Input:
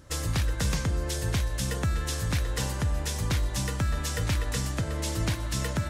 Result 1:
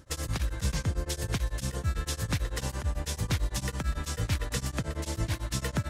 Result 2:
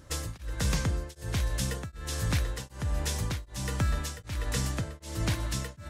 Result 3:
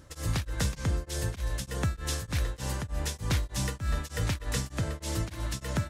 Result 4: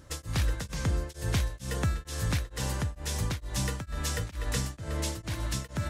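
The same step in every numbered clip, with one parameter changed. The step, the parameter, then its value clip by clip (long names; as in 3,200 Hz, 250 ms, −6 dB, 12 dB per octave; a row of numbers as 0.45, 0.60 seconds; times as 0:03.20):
tremolo along a rectified sine, nulls at: 9, 1.3, 3.3, 2.2 Hertz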